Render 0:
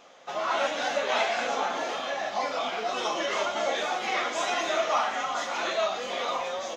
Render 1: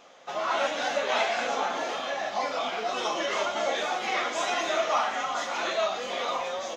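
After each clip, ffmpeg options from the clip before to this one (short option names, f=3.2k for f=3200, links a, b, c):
-af anull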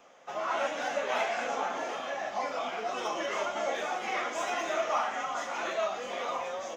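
-filter_complex "[0:a]acrossover=split=190|610|3400[a][b][c][d];[d]aeval=exprs='clip(val(0),-1,0.0188)':c=same[e];[a][b][c][e]amix=inputs=4:normalize=0,equalizer=f=4k:w=2.2:g=-8.5,volume=-3.5dB"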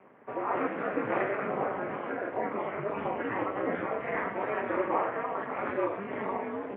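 -af "aeval=exprs='val(0)*sin(2*PI*100*n/s)':c=same,highpass=f=250:t=q:w=0.5412,highpass=f=250:t=q:w=1.307,lowpass=f=2.4k:t=q:w=0.5176,lowpass=f=2.4k:t=q:w=0.7071,lowpass=f=2.4k:t=q:w=1.932,afreqshift=-190,highpass=f=96:w=0.5412,highpass=f=96:w=1.3066,volume=4dB"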